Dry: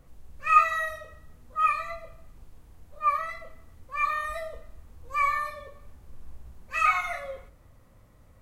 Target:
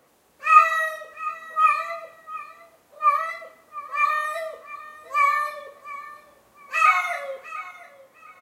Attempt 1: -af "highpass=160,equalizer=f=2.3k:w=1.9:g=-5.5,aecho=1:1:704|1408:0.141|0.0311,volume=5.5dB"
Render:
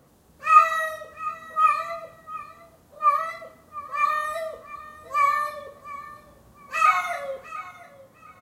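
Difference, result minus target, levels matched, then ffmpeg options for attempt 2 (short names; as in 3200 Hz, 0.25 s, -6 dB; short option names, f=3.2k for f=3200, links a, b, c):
125 Hz band +15.0 dB; 2000 Hz band -3.0 dB
-af "highpass=390,aecho=1:1:704|1408:0.141|0.0311,volume=5.5dB"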